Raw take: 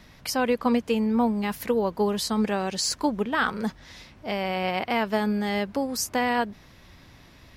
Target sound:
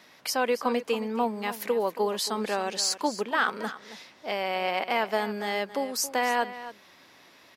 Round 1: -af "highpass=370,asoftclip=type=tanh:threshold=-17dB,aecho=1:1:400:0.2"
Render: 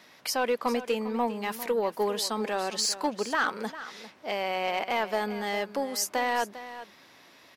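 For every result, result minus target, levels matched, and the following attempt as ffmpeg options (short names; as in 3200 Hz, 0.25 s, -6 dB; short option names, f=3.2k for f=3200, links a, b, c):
soft clip: distortion +14 dB; echo 0.125 s late
-af "highpass=370,asoftclip=type=tanh:threshold=-8dB,aecho=1:1:400:0.2"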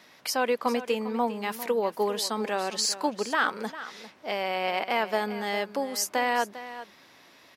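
echo 0.125 s late
-af "highpass=370,asoftclip=type=tanh:threshold=-8dB,aecho=1:1:275:0.2"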